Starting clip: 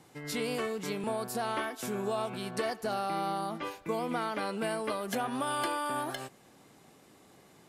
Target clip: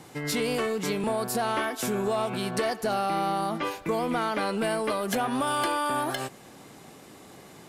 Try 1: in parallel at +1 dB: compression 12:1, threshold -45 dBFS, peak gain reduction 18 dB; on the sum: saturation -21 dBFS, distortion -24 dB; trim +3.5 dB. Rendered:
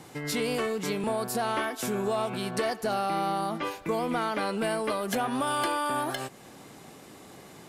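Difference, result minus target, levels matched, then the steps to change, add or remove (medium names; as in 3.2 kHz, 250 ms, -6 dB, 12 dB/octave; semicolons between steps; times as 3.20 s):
compression: peak gain reduction +7.5 dB
change: compression 12:1, threshold -37 dBFS, peak gain reduction 10.5 dB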